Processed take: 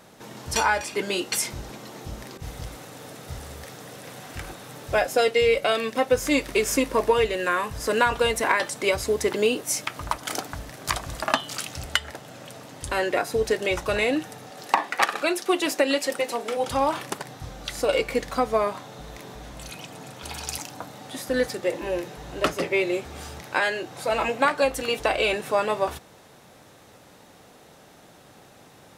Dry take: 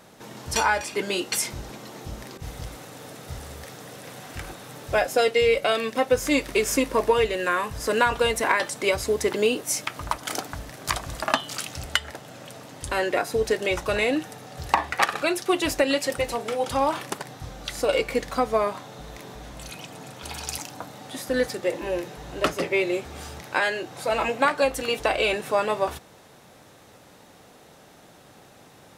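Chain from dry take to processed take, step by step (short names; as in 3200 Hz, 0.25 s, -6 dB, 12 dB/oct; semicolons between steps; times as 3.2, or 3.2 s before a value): 14.5–16.57 HPF 200 Hz 24 dB/oct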